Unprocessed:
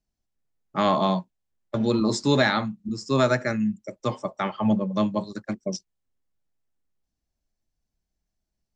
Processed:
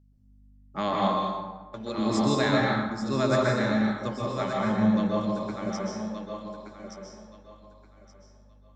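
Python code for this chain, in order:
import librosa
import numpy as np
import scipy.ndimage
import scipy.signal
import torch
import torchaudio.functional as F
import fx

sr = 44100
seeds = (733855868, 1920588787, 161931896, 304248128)

y = fx.low_shelf(x, sr, hz=490.0, db=-10.5, at=(0.96, 1.98))
y = fx.add_hum(y, sr, base_hz=50, snr_db=25)
y = fx.echo_thinned(y, sr, ms=1174, feedback_pct=25, hz=330.0, wet_db=-7.0)
y = fx.rev_plate(y, sr, seeds[0], rt60_s=1.3, hf_ratio=0.55, predelay_ms=115, drr_db=-3.0)
y = y * librosa.db_to_amplitude(-7.0)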